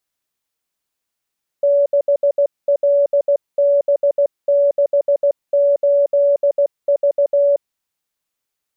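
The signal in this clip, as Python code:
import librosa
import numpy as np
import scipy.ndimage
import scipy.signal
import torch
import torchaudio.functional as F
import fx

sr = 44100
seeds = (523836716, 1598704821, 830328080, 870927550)

y = fx.morse(sr, text='6LB68V', wpm=16, hz=569.0, level_db=-10.5)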